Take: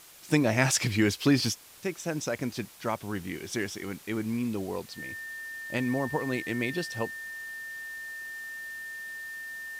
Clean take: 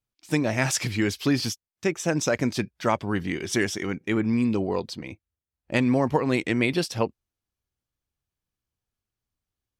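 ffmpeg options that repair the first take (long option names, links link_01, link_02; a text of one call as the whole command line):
ffmpeg -i in.wav -af "bandreject=frequency=1800:width=30,afwtdn=0.0028,asetnsamples=nb_out_samples=441:pad=0,asendcmd='1.81 volume volume 7.5dB',volume=0dB" out.wav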